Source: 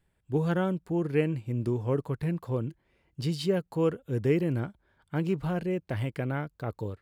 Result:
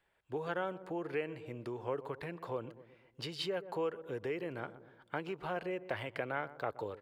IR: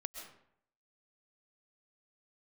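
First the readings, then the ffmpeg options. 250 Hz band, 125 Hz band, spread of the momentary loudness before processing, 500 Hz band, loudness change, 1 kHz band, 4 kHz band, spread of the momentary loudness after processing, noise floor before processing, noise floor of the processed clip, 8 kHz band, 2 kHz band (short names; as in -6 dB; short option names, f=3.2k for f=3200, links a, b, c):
-14.0 dB, -18.5 dB, 8 LU, -7.5 dB, -9.5 dB, -1.5 dB, -1.5 dB, 7 LU, -73 dBFS, -72 dBFS, -8.5 dB, -2.0 dB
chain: -filter_complex "[0:a]asplit=2[a][b];[b]adelay=123,lowpass=f=870:p=1,volume=-17dB,asplit=2[c][d];[d]adelay=123,lowpass=f=870:p=1,volume=0.53,asplit=2[e][f];[f]adelay=123,lowpass=f=870:p=1,volume=0.53,asplit=2[g][h];[h]adelay=123,lowpass=f=870:p=1,volume=0.53,asplit=2[i][j];[j]adelay=123,lowpass=f=870:p=1,volume=0.53[k];[c][e][g][i][k]amix=inputs=5:normalize=0[l];[a][l]amix=inputs=2:normalize=0,acompressor=threshold=-31dB:ratio=6,acrossover=split=440 4100:gain=0.112 1 0.251[m][n][o];[m][n][o]amix=inputs=3:normalize=0,volume=4.5dB"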